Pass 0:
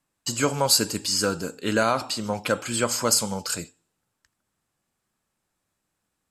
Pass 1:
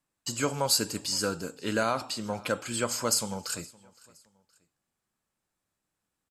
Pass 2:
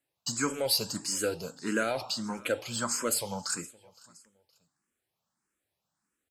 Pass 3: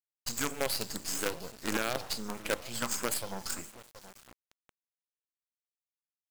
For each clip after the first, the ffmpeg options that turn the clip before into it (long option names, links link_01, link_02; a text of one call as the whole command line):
ffmpeg -i in.wav -af "aecho=1:1:517|1034:0.0668|0.0247,volume=-5.5dB" out.wav
ffmpeg -i in.wav -filter_complex "[0:a]highpass=frequency=110:poles=1,asplit=2[link_01][link_02];[link_02]asoftclip=type=tanh:threshold=-29dB,volume=-7dB[link_03];[link_01][link_03]amix=inputs=2:normalize=0,asplit=2[link_04][link_05];[link_05]afreqshift=1.6[link_06];[link_04][link_06]amix=inputs=2:normalize=1" out.wav
ffmpeg -i in.wav -filter_complex "[0:a]alimiter=limit=-21dB:level=0:latency=1:release=38,asplit=2[link_01][link_02];[link_02]adelay=724,lowpass=frequency=1700:poles=1,volume=-15dB,asplit=2[link_03][link_04];[link_04]adelay=724,lowpass=frequency=1700:poles=1,volume=0.37,asplit=2[link_05][link_06];[link_06]adelay=724,lowpass=frequency=1700:poles=1,volume=0.37[link_07];[link_01][link_03][link_05][link_07]amix=inputs=4:normalize=0,acrusher=bits=5:dc=4:mix=0:aa=0.000001" out.wav